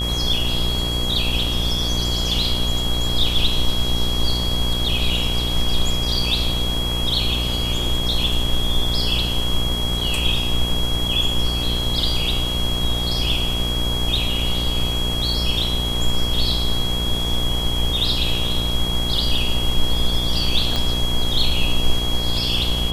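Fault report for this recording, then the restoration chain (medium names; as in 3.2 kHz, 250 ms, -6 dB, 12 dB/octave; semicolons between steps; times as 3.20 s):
buzz 60 Hz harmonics 21 -25 dBFS
whine 3.3 kHz -24 dBFS
20.76 s: pop -9 dBFS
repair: de-click; de-hum 60 Hz, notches 21; band-stop 3.3 kHz, Q 30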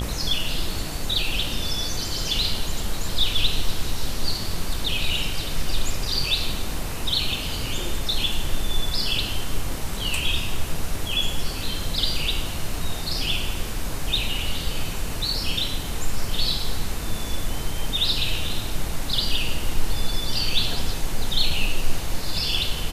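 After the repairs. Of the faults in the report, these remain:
20.76 s: pop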